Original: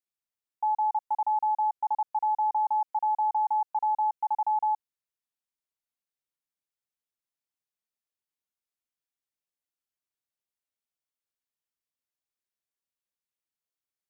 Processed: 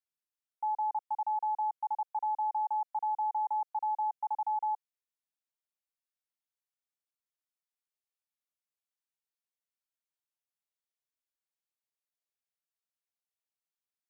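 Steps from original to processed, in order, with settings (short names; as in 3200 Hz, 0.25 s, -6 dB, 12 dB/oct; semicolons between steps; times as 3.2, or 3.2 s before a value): HPF 500 Hz 24 dB/oct; gain -5.5 dB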